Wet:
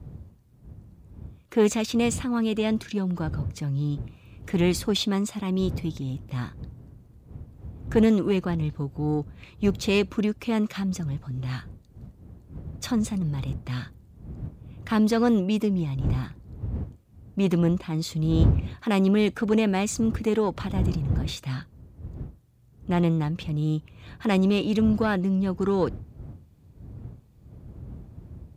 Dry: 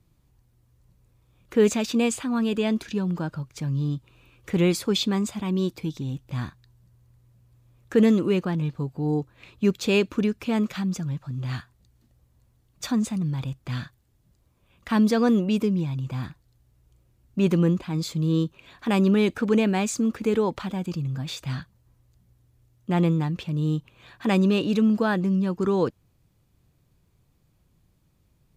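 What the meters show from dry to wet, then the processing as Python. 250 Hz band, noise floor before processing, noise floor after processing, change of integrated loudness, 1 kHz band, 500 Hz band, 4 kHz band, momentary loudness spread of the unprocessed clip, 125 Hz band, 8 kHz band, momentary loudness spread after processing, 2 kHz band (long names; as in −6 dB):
−1.0 dB, −65 dBFS, −55 dBFS, −0.5 dB, −0.5 dB, −1.0 dB, −0.5 dB, 12 LU, +0.5 dB, −0.5 dB, 21 LU, −1.0 dB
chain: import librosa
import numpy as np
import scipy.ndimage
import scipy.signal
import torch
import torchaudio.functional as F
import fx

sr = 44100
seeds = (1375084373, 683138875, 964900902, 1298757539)

y = fx.diode_clip(x, sr, knee_db=-15.0)
y = fx.dmg_wind(y, sr, seeds[0], corner_hz=89.0, level_db=-31.0)
y = scipy.signal.sosfilt(scipy.signal.butter(2, 69.0, 'highpass', fs=sr, output='sos'), y)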